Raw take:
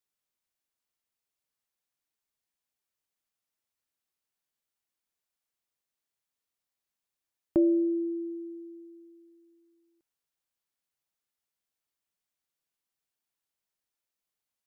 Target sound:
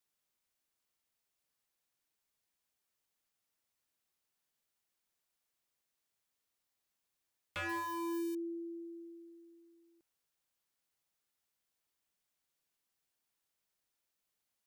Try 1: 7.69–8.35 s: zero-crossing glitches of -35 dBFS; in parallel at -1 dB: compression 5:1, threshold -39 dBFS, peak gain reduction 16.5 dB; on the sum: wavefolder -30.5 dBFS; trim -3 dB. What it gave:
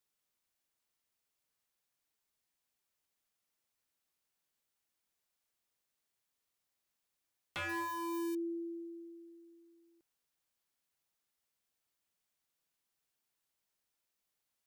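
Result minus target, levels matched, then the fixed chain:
compression: peak gain reduction -7 dB
7.69–8.35 s: zero-crossing glitches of -35 dBFS; in parallel at -1 dB: compression 5:1, threshold -47.5 dBFS, peak gain reduction 23.5 dB; on the sum: wavefolder -30.5 dBFS; trim -3 dB

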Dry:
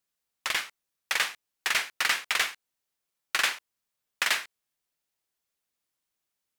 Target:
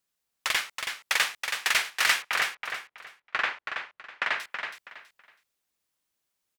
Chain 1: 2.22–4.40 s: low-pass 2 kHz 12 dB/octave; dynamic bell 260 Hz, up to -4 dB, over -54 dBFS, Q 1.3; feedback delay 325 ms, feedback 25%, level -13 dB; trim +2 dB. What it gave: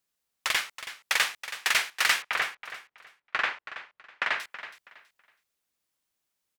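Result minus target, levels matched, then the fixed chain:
echo-to-direct -6.5 dB
2.22–4.40 s: low-pass 2 kHz 12 dB/octave; dynamic bell 260 Hz, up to -4 dB, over -54 dBFS, Q 1.3; feedback delay 325 ms, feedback 25%, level -6.5 dB; trim +2 dB

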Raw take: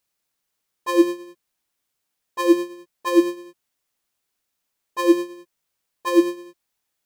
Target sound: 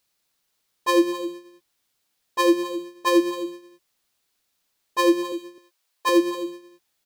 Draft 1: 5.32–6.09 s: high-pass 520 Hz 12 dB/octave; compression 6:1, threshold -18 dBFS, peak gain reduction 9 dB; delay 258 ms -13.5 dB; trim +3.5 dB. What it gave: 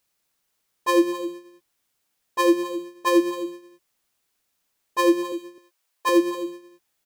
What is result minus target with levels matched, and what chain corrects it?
4 kHz band -2.5 dB
5.32–6.09 s: high-pass 520 Hz 12 dB/octave; compression 6:1, threshold -18 dBFS, peak gain reduction 9 dB; peaking EQ 4.1 kHz +4 dB 0.81 oct; delay 258 ms -13.5 dB; trim +3.5 dB

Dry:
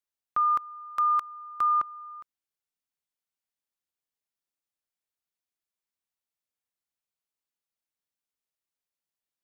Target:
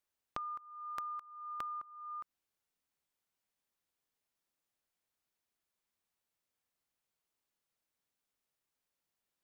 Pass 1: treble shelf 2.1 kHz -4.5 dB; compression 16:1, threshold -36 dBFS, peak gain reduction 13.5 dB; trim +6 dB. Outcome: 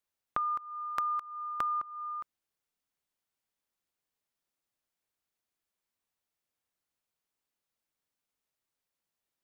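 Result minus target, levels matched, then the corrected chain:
compression: peak gain reduction -10 dB
treble shelf 2.1 kHz -4.5 dB; compression 16:1, threshold -46.5 dBFS, peak gain reduction 23 dB; trim +6 dB

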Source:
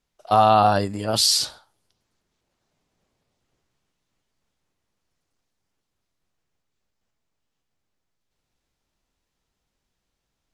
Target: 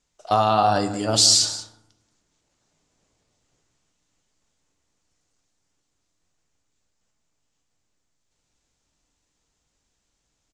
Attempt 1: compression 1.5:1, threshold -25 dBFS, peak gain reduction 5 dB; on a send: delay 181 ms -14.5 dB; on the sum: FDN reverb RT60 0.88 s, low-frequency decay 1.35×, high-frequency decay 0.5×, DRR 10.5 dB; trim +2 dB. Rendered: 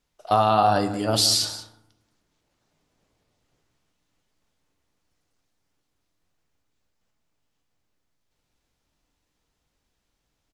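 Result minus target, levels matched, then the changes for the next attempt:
8 kHz band -4.5 dB
add after compression: resonant low-pass 7.3 kHz, resonance Q 3

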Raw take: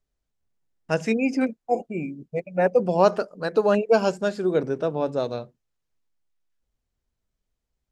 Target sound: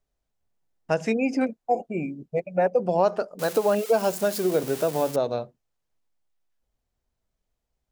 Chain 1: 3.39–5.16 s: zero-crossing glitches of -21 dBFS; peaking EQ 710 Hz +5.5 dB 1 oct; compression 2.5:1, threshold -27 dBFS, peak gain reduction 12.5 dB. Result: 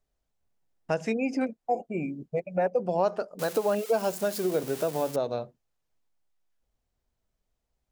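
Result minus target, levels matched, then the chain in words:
compression: peak gain reduction +4 dB
3.39–5.16 s: zero-crossing glitches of -21 dBFS; peaking EQ 710 Hz +5.5 dB 1 oct; compression 2.5:1, threshold -20 dBFS, peak gain reduction 8.5 dB

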